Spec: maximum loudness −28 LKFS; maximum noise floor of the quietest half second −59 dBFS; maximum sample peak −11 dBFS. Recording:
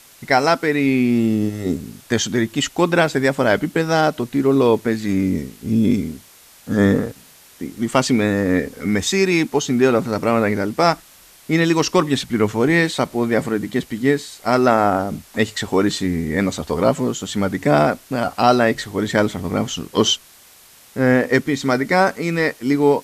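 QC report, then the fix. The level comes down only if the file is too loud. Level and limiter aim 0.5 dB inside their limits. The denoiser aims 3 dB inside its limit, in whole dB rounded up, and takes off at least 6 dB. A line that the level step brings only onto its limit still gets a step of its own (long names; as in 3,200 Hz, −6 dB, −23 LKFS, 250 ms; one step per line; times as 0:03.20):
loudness −18.5 LKFS: out of spec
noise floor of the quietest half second −47 dBFS: out of spec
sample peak −1.5 dBFS: out of spec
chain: broadband denoise 6 dB, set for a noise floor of −47 dBFS
level −10 dB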